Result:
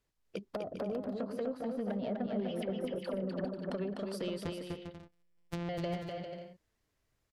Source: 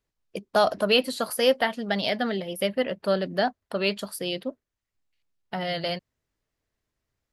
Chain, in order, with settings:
0:04.44–0:05.69: samples sorted by size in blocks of 256 samples
treble cut that deepens with the level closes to 380 Hz, closed at −20.5 dBFS
dynamic equaliser 1,300 Hz, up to −6 dB, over −45 dBFS, Q 0.87
downward compressor 10 to 1, threshold −33 dBFS, peak gain reduction 11.5 dB
0:02.26–0:03.45: all-pass dispersion lows, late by 78 ms, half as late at 800 Hz
soft clipping −28 dBFS, distortion −19 dB
bouncing-ball delay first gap 250 ms, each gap 0.6×, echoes 5

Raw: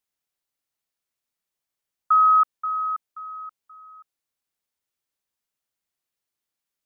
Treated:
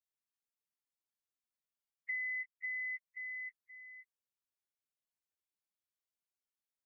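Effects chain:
phase-vocoder pitch shift without resampling +8 semitones
downward compressor 10 to 1, threshold −31 dBFS, peak gain reduction 15.5 dB
level −6.5 dB

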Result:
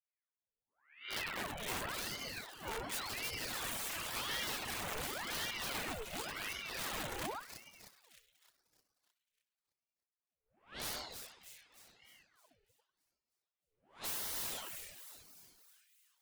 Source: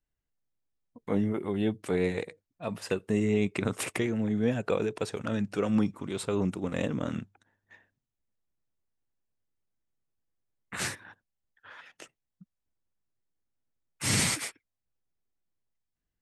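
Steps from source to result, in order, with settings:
peak hold with a rise ahead of every peak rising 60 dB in 0.50 s
low-pass that shuts in the quiet parts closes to 330 Hz, open at −23 dBFS
tilt shelving filter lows −9.5 dB, about 1,300 Hz
convolution reverb RT60 1.2 s, pre-delay 4 ms, DRR −5 dB
in parallel at 0 dB: downward compressor 12 to 1, threshold −33 dBFS, peak gain reduction 24.5 dB
on the sum: resonators tuned to a chord D2 sus4, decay 0.55 s
wrap-around overflow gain 31.5 dB
on a send: echo with a time of its own for lows and highs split 2,200 Hz, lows 95 ms, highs 308 ms, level −5.5 dB
on the sum: reverb reduction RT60 1.1 s
high-pass filter 170 Hz
parametric band 4,800 Hz −5 dB 0.77 octaves
ring modulator whose carrier an LFO sweeps 1,400 Hz, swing 85%, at 0.91 Hz
level +1.5 dB

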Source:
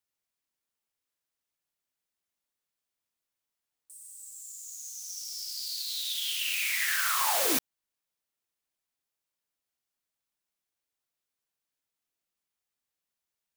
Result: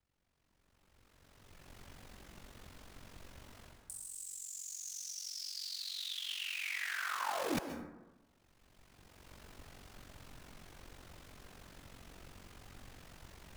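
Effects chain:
camcorder AGC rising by 17 dB per second
ring modulation 23 Hz
reversed playback
downward compressor 8 to 1, threshold −40 dBFS, peak gain reduction 14.5 dB
reversed playback
RIAA equalisation playback
dense smooth reverb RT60 1.1 s, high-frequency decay 0.35×, pre-delay 115 ms, DRR 7.5 dB
level +9 dB

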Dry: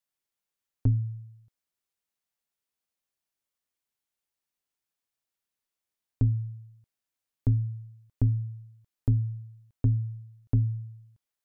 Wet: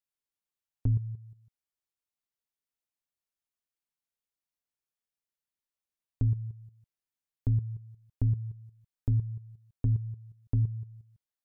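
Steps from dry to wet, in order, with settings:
low-shelf EQ 110 Hz +5 dB
output level in coarse steps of 12 dB

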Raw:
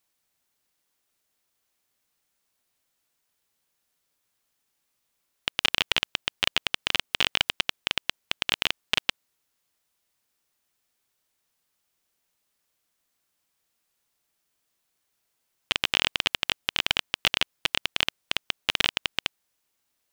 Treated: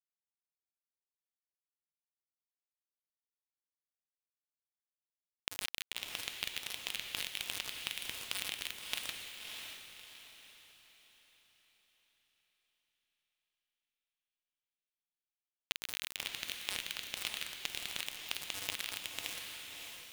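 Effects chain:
tuned comb filter 98 Hz, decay 0.75 s, harmonics odd, mix 80%
0:05.59–0:08.09: elliptic low-pass filter 7,100 Hz, stop band 50 dB
brickwall limiter −25 dBFS, peak gain reduction 9.5 dB
treble cut that deepens with the level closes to 1,400 Hz, closed at −23 dBFS
high-shelf EQ 2,200 Hz +11 dB
downward compressor 16 to 1, threshold −48 dBFS, peak gain reduction 18 dB
convolution reverb RT60 3.9 s, pre-delay 58 ms, DRR 0 dB
bit reduction 7 bits
feedback delay with all-pass diffusion 610 ms, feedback 42%, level −4 dB
level +13.5 dB

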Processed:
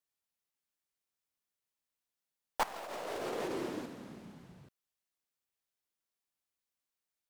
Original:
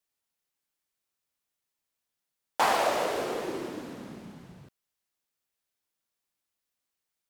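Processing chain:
stylus tracing distortion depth 0.12 ms
0:02.63–0:03.86: compressor whose output falls as the input rises −34 dBFS, ratio −1
level −6 dB

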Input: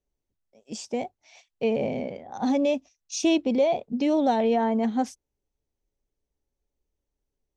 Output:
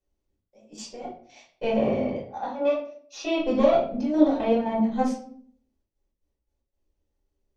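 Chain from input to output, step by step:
one-sided soft clipper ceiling −21 dBFS
0:02.33–0:03.40: three-way crossover with the lows and the highs turned down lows −21 dB, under 370 Hz, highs −21 dB, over 4,500 Hz
gate pattern "xxx.x.x.x.xxxx" 116 BPM −12 dB
convolution reverb RT60 0.55 s, pre-delay 3 ms, DRR −8 dB
level −7.5 dB

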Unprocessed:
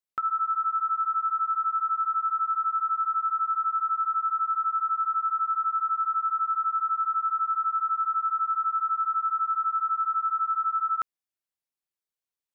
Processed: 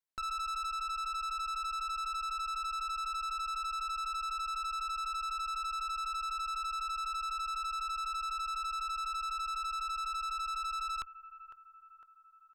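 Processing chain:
brickwall limiter −24.5 dBFS, peak gain reduction 4 dB
parametric band 1,200 Hz +6 dB 1.1 octaves
notch filter 1,200 Hz, Q 6.6
repeating echo 505 ms, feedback 56%, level −17 dB
tube saturation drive 35 dB, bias 0.8

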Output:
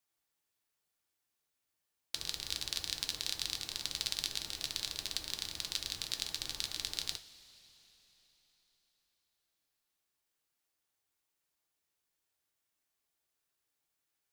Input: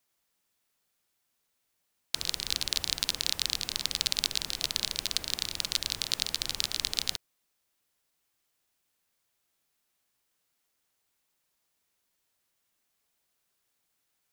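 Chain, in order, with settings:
coupled-rooms reverb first 0.24 s, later 4.1 s, from −20 dB, DRR 6 dB
level −8 dB

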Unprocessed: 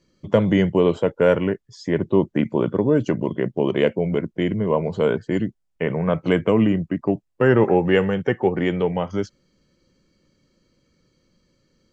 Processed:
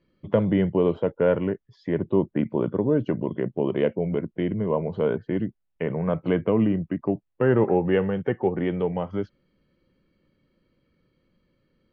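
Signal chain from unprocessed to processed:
low-pass filter 3,400 Hz 24 dB per octave
dynamic equaliser 2,500 Hz, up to −6 dB, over −37 dBFS, Q 0.71
level −3.5 dB

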